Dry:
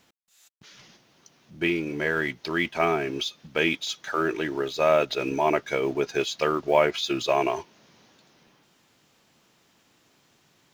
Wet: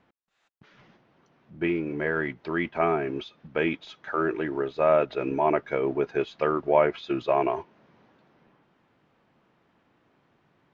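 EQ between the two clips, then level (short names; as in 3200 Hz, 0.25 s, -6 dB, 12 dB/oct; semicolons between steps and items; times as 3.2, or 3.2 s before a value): LPF 1700 Hz 12 dB/oct; 0.0 dB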